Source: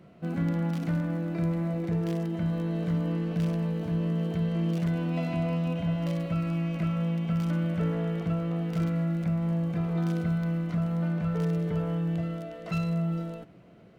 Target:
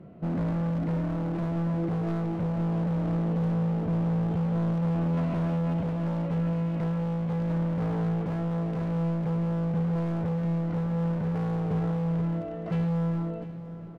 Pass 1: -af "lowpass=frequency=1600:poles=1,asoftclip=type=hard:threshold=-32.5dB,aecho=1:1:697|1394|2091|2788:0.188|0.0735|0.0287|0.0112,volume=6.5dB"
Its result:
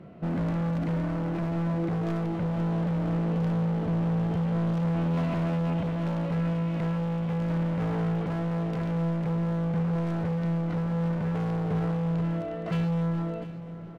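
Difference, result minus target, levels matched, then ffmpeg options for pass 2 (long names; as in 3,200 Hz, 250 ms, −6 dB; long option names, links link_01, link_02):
2,000 Hz band +3.5 dB
-af "lowpass=frequency=620:poles=1,asoftclip=type=hard:threshold=-32.5dB,aecho=1:1:697|1394|2091|2788:0.188|0.0735|0.0287|0.0112,volume=6.5dB"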